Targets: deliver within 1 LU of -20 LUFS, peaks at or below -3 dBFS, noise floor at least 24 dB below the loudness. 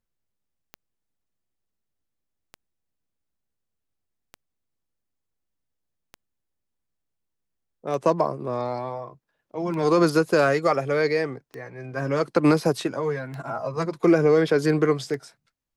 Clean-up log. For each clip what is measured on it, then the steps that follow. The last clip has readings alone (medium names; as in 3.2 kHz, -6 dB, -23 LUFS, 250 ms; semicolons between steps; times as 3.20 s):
clicks found 9; loudness -23.5 LUFS; peak level -8.0 dBFS; loudness target -20.0 LUFS
-> de-click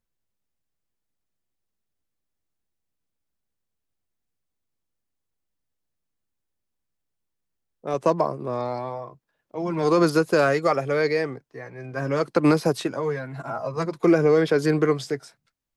clicks found 0; loudness -23.0 LUFS; peak level -8.0 dBFS; loudness target -20.0 LUFS
-> trim +3 dB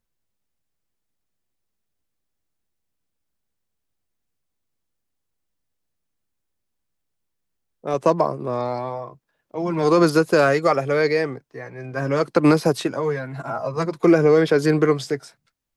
loudness -20.0 LUFS; peak level -5.0 dBFS; noise floor -77 dBFS